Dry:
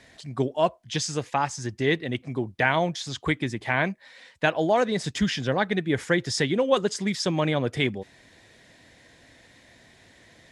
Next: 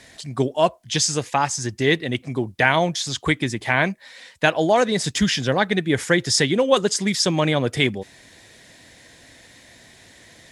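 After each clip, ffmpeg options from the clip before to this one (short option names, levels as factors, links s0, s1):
-af "aemphasis=mode=production:type=cd,volume=1.68"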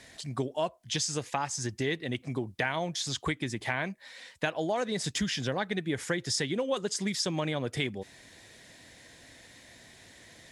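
-af "acompressor=threshold=0.0631:ratio=3,volume=0.562"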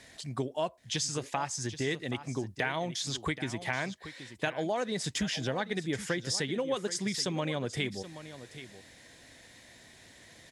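-af "aecho=1:1:777:0.211,volume=0.841"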